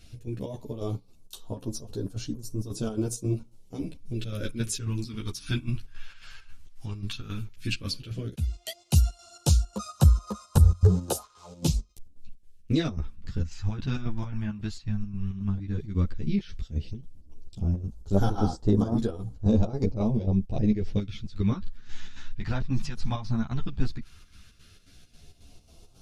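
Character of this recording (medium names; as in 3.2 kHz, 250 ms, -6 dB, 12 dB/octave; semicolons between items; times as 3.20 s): phasing stages 2, 0.12 Hz, lowest notch 450–2200 Hz; chopped level 3.7 Hz, depth 60%, duty 65%; a shimmering, thickened sound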